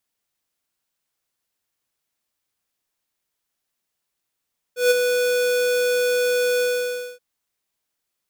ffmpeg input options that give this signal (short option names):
-f lavfi -i "aevalsrc='0.2*(2*lt(mod(493*t,1),0.5)-1)':d=2.428:s=44100,afade=t=in:d=0.147,afade=t=out:st=0.147:d=0.021:silence=0.501,afade=t=out:st=1.85:d=0.578"